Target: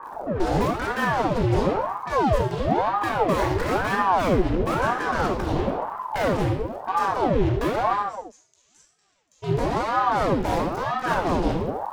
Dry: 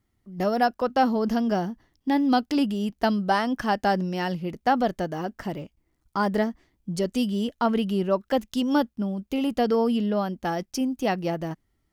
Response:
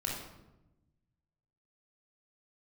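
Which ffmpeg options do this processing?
-filter_complex "[0:a]aeval=exprs='val(0)+0.5*0.0251*sgn(val(0))':channel_layout=same,afwtdn=0.0251,acompressor=threshold=-27dB:ratio=6,volume=33dB,asoftclip=hard,volume=-33dB,acrusher=bits=5:mix=0:aa=0.5,asplit=3[link_01][link_02][link_03];[link_01]afade=type=out:start_time=7.95:duration=0.02[link_04];[link_02]bandpass=frequency=6700:width_type=q:width=9.9:csg=0,afade=type=in:start_time=7.95:duration=0.02,afade=type=out:start_time=9.42:duration=0.02[link_05];[link_03]afade=type=in:start_time=9.42:duration=0.02[link_06];[link_04][link_05][link_06]amix=inputs=3:normalize=0[link_07];[1:a]atrim=start_sample=2205,afade=type=out:start_time=0.4:duration=0.01,atrim=end_sample=18081[link_08];[link_07][link_08]afir=irnorm=-1:irlink=0,aeval=exprs='val(0)*sin(2*PI*570*n/s+570*0.8/1*sin(2*PI*1*n/s))':channel_layout=same,volume=6.5dB"

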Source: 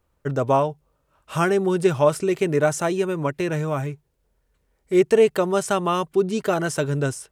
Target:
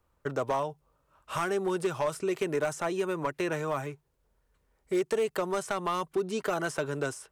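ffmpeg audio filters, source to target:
ffmpeg -i in.wav -filter_complex "[0:a]equalizer=frequency=1100:width=1.5:gain=4.5,acrossover=split=280|3600[link_01][link_02][link_03];[link_01]acompressor=threshold=-39dB:ratio=4[link_04];[link_02]acompressor=threshold=-23dB:ratio=4[link_05];[link_03]acompressor=threshold=-39dB:ratio=4[link_06];[link_04][link_05][link_06]amix=inputs=3:normalize=0,asoftclip=type=hard:threshold=-18.5dB,volume=-3.5dB" out.wav

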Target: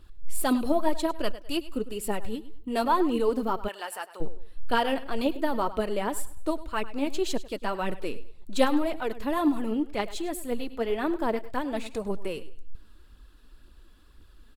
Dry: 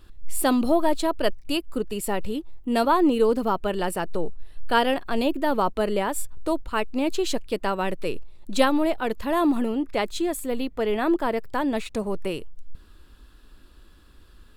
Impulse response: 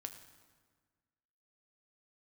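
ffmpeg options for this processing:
-filter_complex "[0:a]aecho=1:1:102|204|306:0.158|0.0475|0.0143,aphaser=in_gain=1:out_gain=1:delay=4.8:decay=0.44:speed=1.9:type=triangular,asplit=3[link_01][link_02][link_03];[link_01]afade=type=out:start_time=3.67:duration=0.02[link_04];[link_02]highpass=820,afade=type=in:start_time=3.67:duration=0.02,afade=type=out:start_time=4.2:duration=0.02[link_05];[link_03]afade=type=in:start_time=4.2:duration=0.02[link_06];[link_04][link_05][link_06]amix=inputs=3:normalize=0,volume=-5.5dB"

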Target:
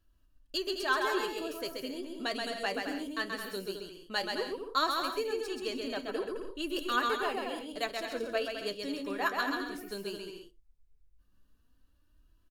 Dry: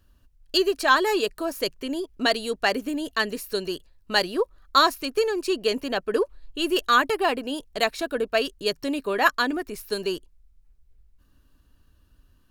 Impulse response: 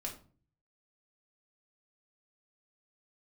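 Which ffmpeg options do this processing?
-filter_complex "[0:a]aecho=1:1:130|214.5|269.4|305.1|328.3:0.631|0.398|0.251|0.158|0.1,flanger=delay=3:depth=7.8:regen=55:speed=0.16:shape=sinusoidal,asplit=2[link_01][link_02];[1:a]atrim=start_sample=2205,afade=type=out:start_time=0.16:duration=0.01,atrim=end_sample=7497[link_03];[link_02][link_03]afir=irnorm=-1:irlink=0,volume=-11dB[link_04];[link_01][link_04]amix=inputs=2:normalize=0,volume=-9dB"

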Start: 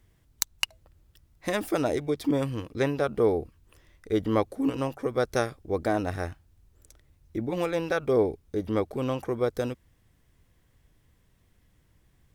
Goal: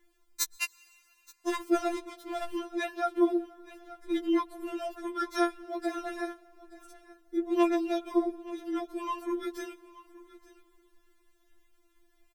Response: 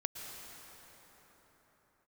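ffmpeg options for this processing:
-filter_complex "[0:a]aecho=1:1:876:0.119,asettb=1/sr,asplit=3[link_01][link_02][link_03];[link_01]atrim=end=0.564[link_04];[link_02]atrim=start=0.56:end=2.55,asetpts=PTS-STARTPTS,afade=type=in:duration=0.004:curve=qsin,afade=type=out:start_time=1.986:duration=0.004:curve=qsin,aeval=exprs='sgn(val(0))*max(abs(val(0))-0.0158,0)':channel_layout=same[link_05];[link_03]atrim=start=2.546[link_06];[link_04][link_05]acrossfade=duration=0.004:curve1=hsin:curve2=qsin[link_07];[link_07][link_06]acrossfade=duration=0.004:curve1=qsin:curve2=hsin,asplit=2[link_08][link_09];[1:a]atrim=start_sample=2205[link_10];[link_09][link_10]afir=irnorm=-1:irlink=0,volume=-18.5dB[link_11];[link_08][link_11]amix=inputs=2:normalize=0,afftfilt=real='re*4*eq(mod(b,16),0)':imag='im*4*eq(mod(b,16),0)':win_size=2048:overlap=0.75"

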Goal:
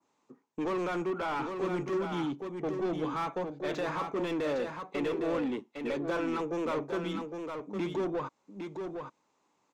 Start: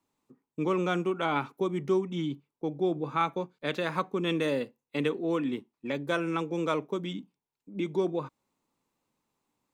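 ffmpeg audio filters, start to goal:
ffmpeg -i in.wav -filter_complex "[0:a]adynamicequalizer=threshold=0.00447:dfrequency=3300:dqfactor=0.72:tfrequency=3300:tqfactor=0.72:attack=5:release=100:ratio=0.375:range=2:mode=cutabove:tftype=bell,lowpass=frequency=6700:width_type=q:width=3.2,asplit=2[link_01][link_02];[link_02]highpass=frequency=720:poles=1,volume=27dB,asoftclip=type=tanh:threshold=-14.5dB[link_03];[link_01][link_03]amix=inputs=2:normalize=0,lowpass=frequency=1100:poles=1,volume=-6dB,asplit=2[link_04][link_05];[link_05]aecho=0:1:809:0.501[link_06];[link_04][link_06]amix=inputs=2:normalize=0,volume=-9dB" out.wav

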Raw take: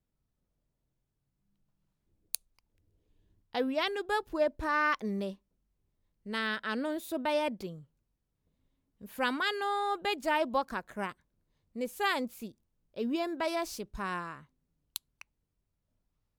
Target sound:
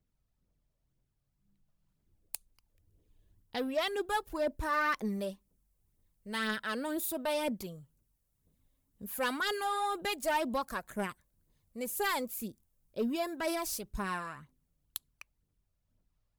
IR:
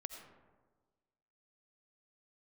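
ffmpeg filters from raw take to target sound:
-filter_complex "[0:a]acrossover=split=7600[link_01][link_02];[link_01]aphaser=in_gain=1:out_gain=1:delay=1.9:decay=0.45:speed=2:type=triangular[link_03];[link_02]dynaudnorm=framelen=590:gausssize=9:maxgain=13.5dB[link_04];[link_03][link_04]amix=inputs=2:normalize=0,asoftclip=type=tanh:threshold=-22dB,volume=-1dB"

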